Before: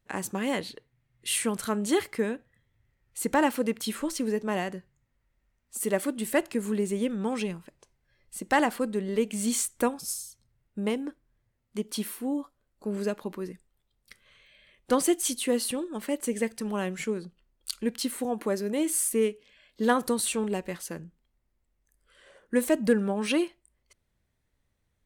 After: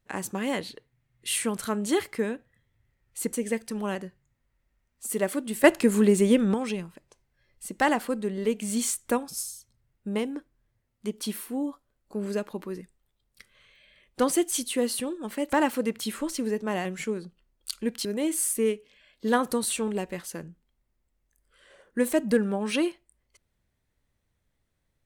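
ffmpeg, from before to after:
-filter_complex "[0:a]asplit=8[a][b][c][d][e][f][g][h];[a]atrim=end=3.332[i];[b]atrim=start=16.228:end=16.852[j];[c]atrim=start=4.658:end=6.352[k];[d]atrim=start=6.348:end=7.252,asetpts=PTS-STARTPTS,volume=8dB[l];[e]atrim=start=7.248:end=16.232[m];[f]atrim=start=3.328:end=4.662[n];[g]atrim=start=16.848:end=18.052[o];[h]atrim=start=18.608[p];[i][j]acrossfade=d=0.004:c1=hsin:c2=hsin[q];[q][k]acrossfade=d=0.004:c1=hsin:c2=hsin[r];[r][l]acrossfade=d=0.004:c1=hsin:c2=hsin[s];[s][m]acrossfade=d=0.004:c1=hsin:c2=hsin[t];[t][n]acrossfade=d=0.004:c1=hsin:c2=hsin[u];[u][o]acrossfade=d=0.004:c1=hsin:c2=hsin[v];[v][p]acrossfade=d=0.004:c1=hsin:c2=hsin"

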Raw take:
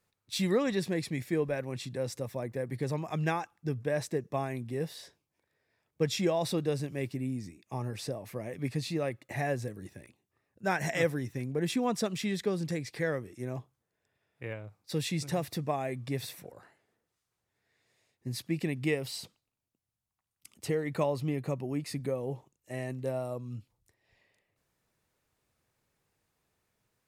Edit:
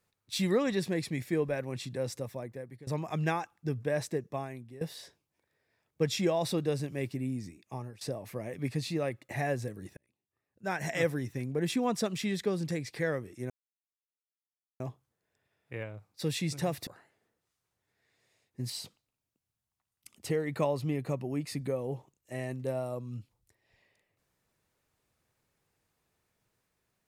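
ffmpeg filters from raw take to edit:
-filter_complex "[0:a]asplit=8[a][b][c][d][e][f][g][h];[a]atrim=end=2.87,asetpts=PTS-STARTPTS,afade=t=out:st=2.12:d=0.75:silence=0.0891251[i];[b]atrim=start=2.87:end=4.81,asetpts=PTS-STARTPTS,afade=t=in:d=0.004:c=hsin:silence=0.0891251,afade=t=out:st=1.2:d=0.74:silence=0.158489[j];[c]atrim=start=4.81:end=8.01,asetpts=PTS-STARTPTS,afade=t=in:d=0.004:c=hsin:silence=0.158489,afade=t=out:st=2.82:d=0.38:silence=0.105925[k];[d]atrim=start=8.01:end=9.97,asetpts=PTS-STARTPTS,afade=t=in:d=0.004:c=hsin:silence=0.105925,afade=t=out:st=1.956:d=0.004:c=hsin[l];[e]atrim=start=9.97:end=13.5,asetpts=PTS-STARTPTS,afade=t=in:d=1.17,afade=t=out:st=3.526:d=0.004:c=hsin,apad=pad_dur=1.3[m];[f]atrim=start=13.5:end=15.572,asetpts=PTS-STARTPTS,afade=t=in:d=0.004:c=hsin[n];[g]atrim=start=16.538:end=18.372[o];[h]atrim=start=19.088[p];[i][j][k][l][m][n]concat=n=6:v=0:a=1[q];[q][o]acrossfade=d=0.004:c1=hsin:c2=hsin[r];[r][p]acrossfade=d=0.004:c1=hsin:c2=hsin"

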